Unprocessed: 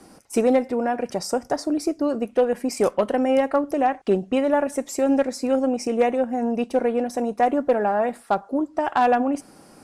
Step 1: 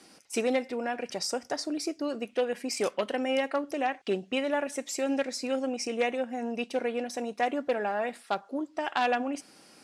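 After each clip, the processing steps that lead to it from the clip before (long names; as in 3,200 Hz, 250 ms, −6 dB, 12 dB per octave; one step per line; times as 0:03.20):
meter weighting curve D
level −8.5 dB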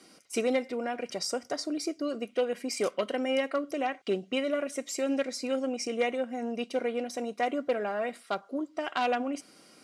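notch comb filter 860 Hz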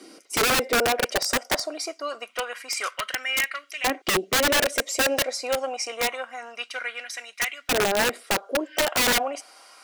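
auto-filter high-pass saw up 0.26 Hz 300–2,400 Hz
healed spectral selection 0:08.50–0:08.79, 1,500–5,400 Hz both
wrap-around overflow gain 22.5 dB
level +6.5 dB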